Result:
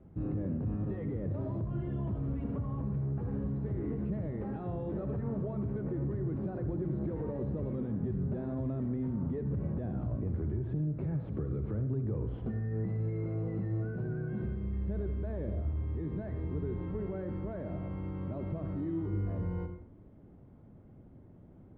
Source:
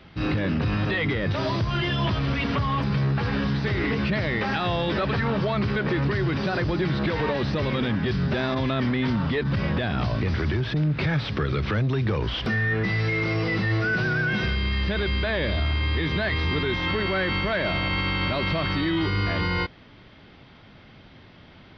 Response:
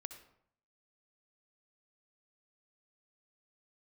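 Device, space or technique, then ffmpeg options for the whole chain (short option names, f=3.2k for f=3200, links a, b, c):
television next door: -filter_complex "[0:a]acompressor=threshold=-27dB:ratio=3,lowpass=460[a];[1:a]atrim=start_sample=2205[b];[a][b]afir=irnorm=-1:irlink=0"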